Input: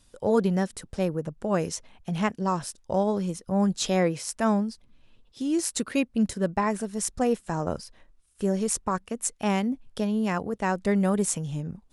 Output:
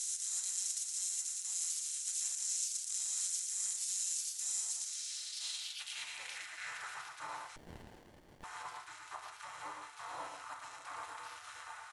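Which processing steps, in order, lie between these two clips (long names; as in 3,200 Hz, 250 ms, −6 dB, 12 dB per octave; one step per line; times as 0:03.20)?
compressor on every frequency bin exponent 0.2
parametric band 240 Hz +15 dB 0.86 octaves
in parallel at −4 dB: soft clipping −11 dBFS, distortion −9 dB
on the sum: gate on every frequency bin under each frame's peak −30 dB weak
parametric band 1,500 Hz −10.5 dB 2.7 octaves
on a send: single-tap delay 115 ms −5 dB
on the sum: feedback delay network reverb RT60 0.39 s, low-frequency decay 0.9×, high-frequency decay 0.55×, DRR 1.5 dB
brickwall limiter −14 dBFS, peak gain reduction 6.5 dB
band-pass filter sweep 7,000 Hz → 1,100 Hz, 0:04.73–0:07.27
slap from a distant wall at 100 metres, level −13 dB
0:07.56–0:08.44: windowed peak hold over 33 samples
level −6.5 dB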